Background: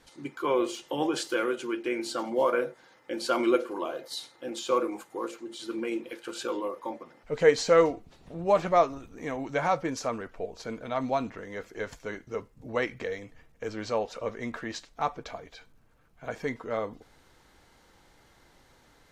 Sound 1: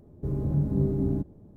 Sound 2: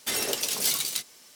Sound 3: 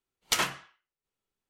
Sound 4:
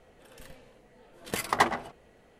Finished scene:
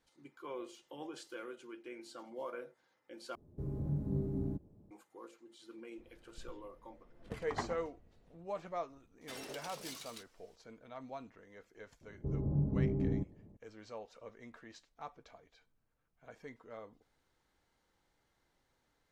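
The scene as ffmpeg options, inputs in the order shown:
-filter_complex "[1:a]asplit=2[a][b];[0:a]volume=-18dB[c];[4:a]aemphasis=mode=reproduction:type=riaa[d];[2:a]lowpass=f=2.7k:p=1[e];[b]lowpass=f=1.2k:w=0.5412,lowpass=f=1.2k:w=1.3066[f];[c]asplit=2[g][h];[g]atrim=end=3.354[i];[a]atrim=end=1.56,asetpts=PTS-STARTPTS,volume=-10.5dB[j];[h]atrim=start=4.906[k];[d]atrim=end=2.39,asetpts=PTS-STARTPTS,volume=-16.5dB,afade=t=in:d=0.004:c=hsin,afade=t=out:st=2.386:d=0.004:c=hsin,adelay=5980[l];[e]atrim=end=1.35,asetpts=PTS-STARTPTS,volume=-15dB,afade=t=in:d=0.004:c=hsin,afade=t=out:st=1.346:d=0.004:c=hsin,adelay=9210[m];[f]atrim=end=1.56,asetpts=PTS-STARTPTS,volume=-7dB,afade=t=in:d=0.004:c=hsin,afade=t=out:st=1.556:d=0.004:c=hsin,adelay=12010[n];[i][j]acrossfade=d=0.004:c1=hsin:c2=hsin[o];[o][k]acrossfade=d=0.004:c1=hsin:c2=hsin[p];[p][l][m][n]amix=inputs=4:normalize=0"

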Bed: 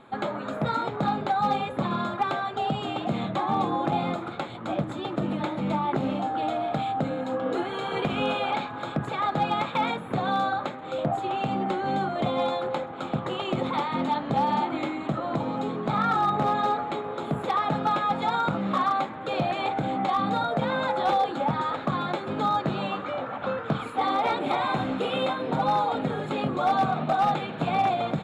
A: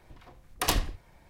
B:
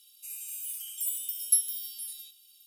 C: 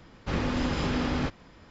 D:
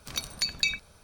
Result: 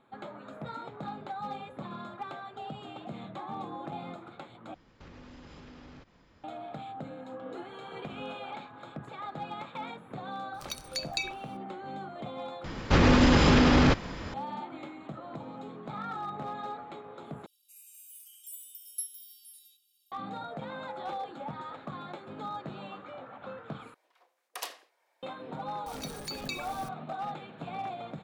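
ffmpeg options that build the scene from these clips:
-filter_complex "[3:a]asplit=2[a][b];[4:a]asplit=2[c][d];[0:a]volume=-13.5dB[e];[a]acompressor=threshold=-38dB:ratio=6:attack=3.2:release=140:knee=1:detection=peak[f];[b]alimiter=level_in=25dB:limit=-1dB:release=50:level=0:latency=1[g];[1:a]highpass=f=470:w=0.5412,highpass=f=470:w=1.3066[h];[d]aeval=exprs='val(0)+0.5*0.0299*sgn(val(0))':c=same[i];[e]asplit=5[j][k][l][m][n];[j]atrim=end=4.744[o];[f]atrim=end=1.7,asetpts=PTS-STARTPTS,volume=-9dB[p];[k]atrim=start=6.436:end=12.644[q];[g]atrim=end=1.7,asetpts=PTS-STARTPTS,volume=-11dB[r];[l]atrim=start=14.336:end=17.464[s];[2:a]atrim=end=2.66,asetpts=PTS-STARTPTS,volume=-13dB[t];[m]atrim=start=20.116:end=23.944[u];[h]atrim=end=1.29,asetpts=PTS-STARTPTS,volume=-11dB[v];[n]atrim=start=25.226[w];[c]atrim=end=1.03,asetpts=PTS-STARTPTS,volume=-6.5dB,afade=t=in:d=0.004:c=hsin,afade=t=out:st=1.026:d=0.004:c=hsin,adelay=10540[x];[i]atrim=end=1.03,asetpts=PTS-STARTPTS,volume=-13dB,afade=t=in:d=0.004:c=hsin,afade=t=out:st=1.026:d=0.004:c=hsin,adelay=25860[y];[o][p]acrossfade=d=0.004:c1=hsin:c2=hsin[z];[z][q]acrossfade=d=0.004:c1=hsin:c2=hsin[aa];[aa][r]acrossfade=d=0.004:c1=hsin:c2=hsin[ab];[ab][s]acrossfade=d=0.004:c1=hsin:c2=hsin[ac];[ac][t]acrossfade=d=0.004:c1=hsin:c2=hsin[ad];[ad][u]acrossfade=d=0.004:c1=hsin:c2=hsin[ae];[ae][v]acrossfade=d=0.004:c1=hsin:c2=hsin[af];[af][w]acrossfade=d=0.004:c1=hsin:c2=hsin[ag];[ag][x][y]amix=inputs=3:normalize=0"

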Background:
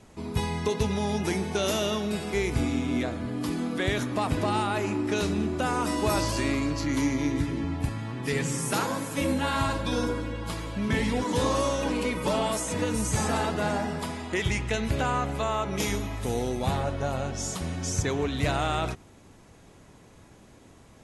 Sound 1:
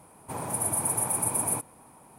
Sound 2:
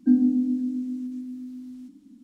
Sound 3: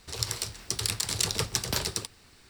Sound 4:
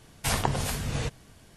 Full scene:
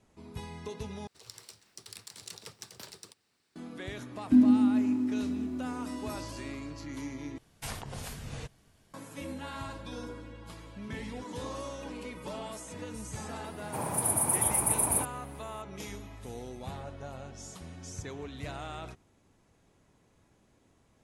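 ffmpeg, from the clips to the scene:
-filter_complex "[0:a]volume=-13.5dB[a];[3:a]highpass=150[b];[2:a]bandreject=f=60:t=h:w=6,bandreject=f=120:t=h:w=6,bandreject=f=180:t=h:w=6,bandreject=f=240:t=h:w=6,bandreject=f=300:t=h:w=6,bandreject=f=360:t=h:w=6,bandreject=f=420:t=h:w=6,bandreject=f=480:t=h:w=6[c];[4:a]alimiter=limit=-17dB:level=0:latency=1:release=115[d];[a]asplit=3[e][f][g];[e]atrim=end=1.074[h];[b]atrim=end=2.49,asetpts=PTS-STARTPTS,volume=-17.5dB[i];[f]atrim=start=3.556:end=7.384[j];[d]atrim=end=1.56,asetpts=PTS-STARTPTS,volume=-10.5dB[k];[g]atrim=start=8.936[l];[c]atrim=end=2.23,asetpts=PTS-STARTPTS,volume=-0.5dB,afade=t=in:d=0.004:c=hsin,afade=t=out:st=2.226:d=0.004:c=hsin,adelay=187425S[m];[1:a]atrim=end=2.18,asetpts=PTS-STARTPTS,afade=t=in:d=0.004:c=hsin,afade=t=out:st=2.176:d=0.004:c=hsin,adelay=13440[n];[h][i]acrossfade=d=0.004:c1=hsin:c2=hsin[o];[o][j]acrossfade=d=0.004:c1=hsin:c2=hsin[p];[p][k]acrossfade=d=0.004:c1=hsin:c2=hsin[q];[q][l]acrossfade=d=0.004:c1=hsin:c2=hsin[r];[r][m][n]amix=inputs=3:normalize=0"

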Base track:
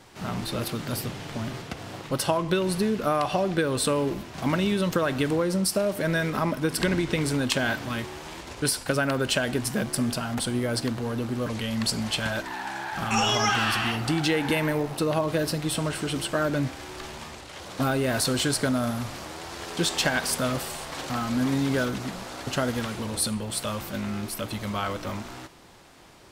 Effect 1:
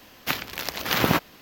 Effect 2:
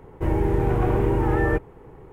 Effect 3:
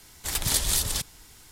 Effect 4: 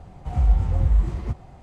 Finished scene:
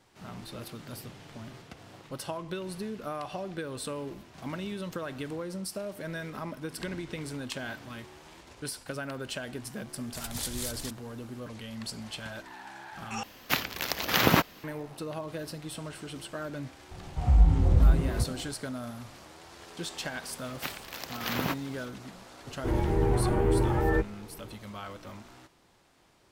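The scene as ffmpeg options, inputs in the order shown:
-filter_complex "[1:a]asplit=2[a][b];[0:a]volume=-12dB[c];[4:a]asplit=7[d][e][f][g][h][i][j];[e]adelay=85,afreqshift=110,volume=-16dB[k];[f]adelay=170,afreqshift=220,volume=-20.7dB[l];[g]adelay=255,afreqshift=330,volume=-25.5dB[m];[h]adelay=340,afreqshift=440,volume=-30.2dB[n];[i]adelay=425,afreqshift=550,volume=-34.9dB[o];[j]adelay=510,afreqshift=660,volume=-39.7dB[p];[d][k][l][m][n][o][p]amix=inputs=7:normalize=0[q];[b]acontrast=29[r];[2:a]asplit=2[s][t];[t]adelay=11.1,afreqshift=2.2[u];[s][u]amix=inputs=2:normalize=1[v];[c]asplit=2[w][x];[w]atrim=end=13.234[y];[a]atrim=end=1.41,asetpts=PTS-STARTPTS,volume=-1dB[z];[x]atrim=start=14.636[aa];[3:a]atrim=end=1.51,asetpts=PTS-STARTPTS,volume=-11.5dB,afade=t=in:d=0.004:c=hsin,afade=t=out:st=1.506:d=0.004:c=hsin,adelay=9890[ab];[q]atrim=end=1.62,asetpts=PTS-STARTPTS,volume=-1.5dB,afade=t=in:d=0.004:c=hsin,afade=t=out:st=1.616:d=0.004:c=hsin,adelay=16910[ac];[r]atrim=end=1.41,asetpts=PTS-STARTPTS,volume=-14.5dB,afade=t=in:d=0.004:c=hsin,afade=t=out:st=1.406:d=0.004:c=hsin,adelay=20350[ad];[v]atrim=end=2.12,asetpts=PTS-STARTPTS,volume=-1.5dB,afade=t=in:d=0.004:c=hsin,afade=t=out:st=2.116:d=0.004:c=hsin,adelay=22430[ae];[y][z]acrossfade=d=0.004:c1=hsin:c2=hsin[af];[af][aa]acrossfade=d=0.004:c1=hsin:c2=hsin[ag];[ag][ab][ac][ad][ae]amix=inputs=5:normalize=0"

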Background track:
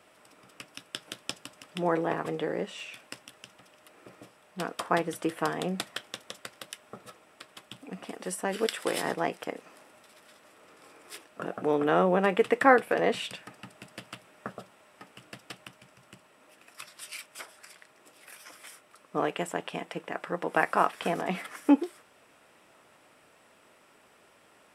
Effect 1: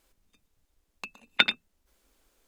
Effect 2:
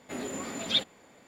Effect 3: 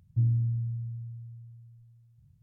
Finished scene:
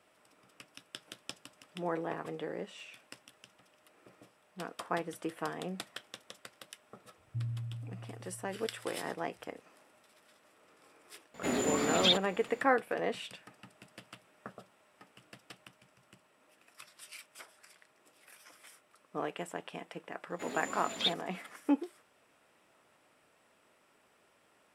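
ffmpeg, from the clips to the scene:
-filter_complex "[2:a]asplit=2[a][b];[0:a]volume=-8dB[c];[a]alimiter=level_in=19.5dB:limit=-1dB:release=50:level=0:latency=1[d];[b]lowshelf=f=150:g=-10.5[e];[3:a]atrim=end=2.42,asetpts=PTS-STARTPTS,volume=-11.5dB,afade=t=in:d=0.004:c=hsin,afade=t=out:st=2.416:d=0.004:c=hsin,adelay=7180[f];[d]atrim=end=1.27,asetpts=PTS-STARTPTS,volume=-15dB,afade=t=in:d=0.004:c=hsin,afade=t=out:st=1.266:d=0.004:c=hsin,adelay=11340[g];[e]atrim=end=1.27,asetpts=PTS-STARTPTS,volume=-5dB,afade=t=in:d=0.004:c=hsin,afade=t=out:st=1.266:d=0.004:c=hsin,adelay=20300[h];[c][f][g][h]amix=inputs=4:normalize=0"

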